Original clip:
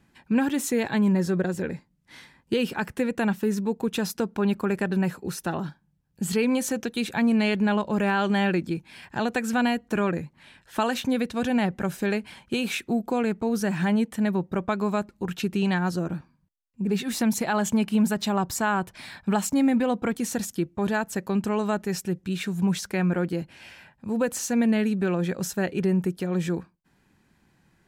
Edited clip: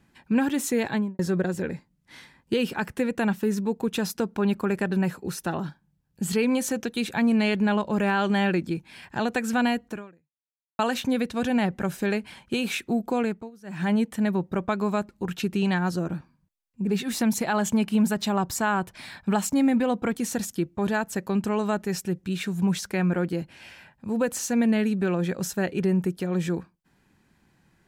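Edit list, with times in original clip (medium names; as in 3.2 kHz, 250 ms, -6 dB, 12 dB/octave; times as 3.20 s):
0.89–1.19 s: studio fade out
9.87–10.79 s: fade out exponential
13.23–13.91 s: dip -24 dB, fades 0.28 s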